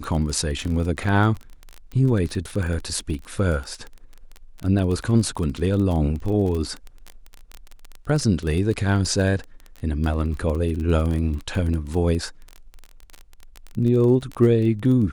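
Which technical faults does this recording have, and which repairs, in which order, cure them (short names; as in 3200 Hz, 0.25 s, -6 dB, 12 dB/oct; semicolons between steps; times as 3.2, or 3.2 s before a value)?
crackle 23/s -26 dBFS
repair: de-click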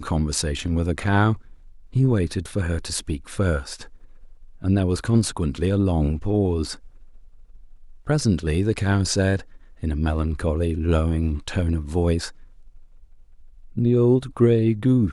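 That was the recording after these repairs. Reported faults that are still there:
none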